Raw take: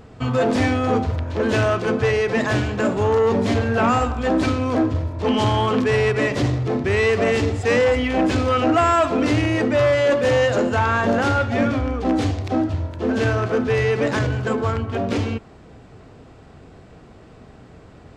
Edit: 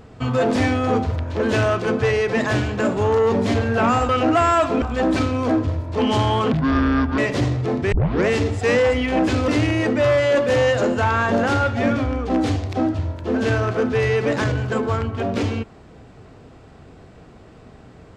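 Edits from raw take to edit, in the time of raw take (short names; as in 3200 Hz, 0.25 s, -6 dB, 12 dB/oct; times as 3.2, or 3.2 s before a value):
5.79–6.2 speed 62%
6.94 tape start 0.36 s
8.5–9.23 move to 4.09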